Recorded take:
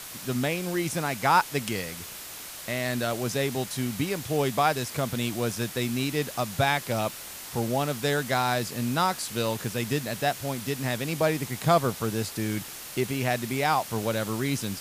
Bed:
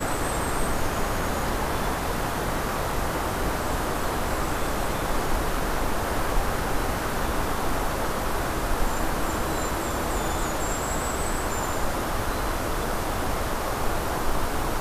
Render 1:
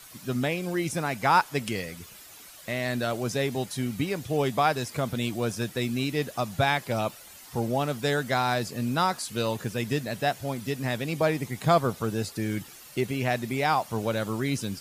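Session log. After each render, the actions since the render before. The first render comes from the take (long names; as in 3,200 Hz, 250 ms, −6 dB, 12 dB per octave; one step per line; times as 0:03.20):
broadband denoise 11 dB, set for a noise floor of −41 dBFS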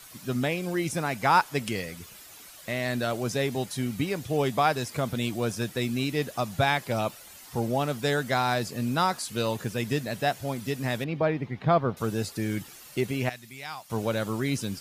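0:11.04–0:11.97: high-frequency loss of the air 310 metres
0:13.29–0:13.90: guitar amp tone stack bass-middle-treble 5-5-5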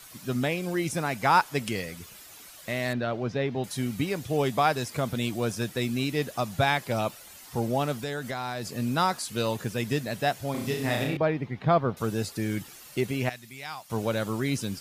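0:02.93–0:03.64: high-frequency loss of the air 250 metres
0:07.97–0:08.76: downward compressor 5 to 1, threshold −29 dBFS
0:10.51–0:11.17: flutter between parallel walls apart 5.8 metres, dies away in 0.64 s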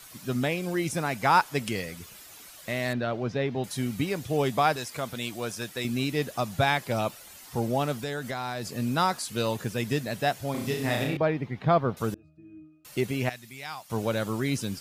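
0:04.76–0:05.85: low-shelf EQ 450 Hz −9 dB
0:12.14–0:12.85: resonances in every octave D#, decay 0.67 s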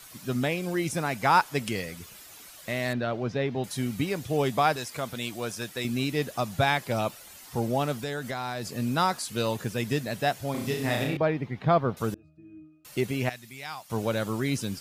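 no processing that can be heard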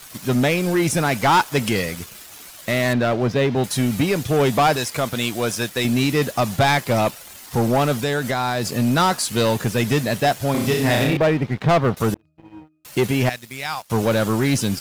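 leveller curve on the samples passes 3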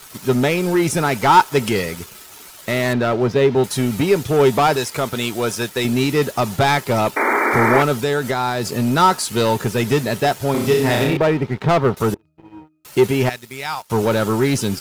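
0:07.16–0:07.83: sound drawn into the spectrogram noise 220–2,400 Hz −19 dBFS
hollow resonant body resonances 400/910/1,300 Hz, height 8 dB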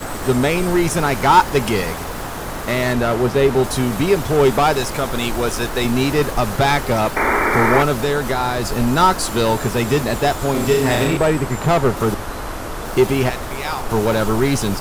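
mix in bed −0.5 dB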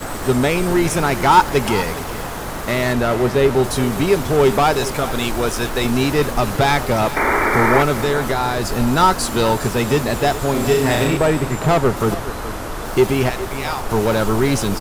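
single-tap delay 414 ms −14.5 dB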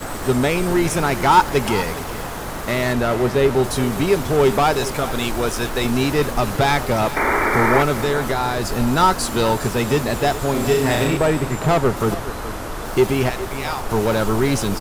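level −1.5 dB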